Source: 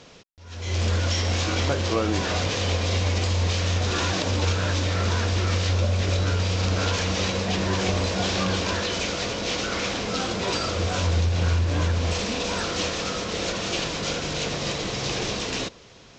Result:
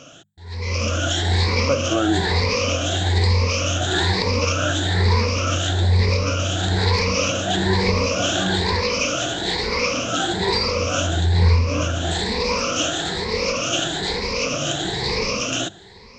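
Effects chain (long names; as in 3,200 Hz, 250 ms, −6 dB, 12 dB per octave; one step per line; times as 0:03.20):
rippled gain that drifts along the octave scale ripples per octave 0.89, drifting +1.1 Hz, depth 19 dB
mains-hum notches 50/100/150/200 Hz
level +1 dB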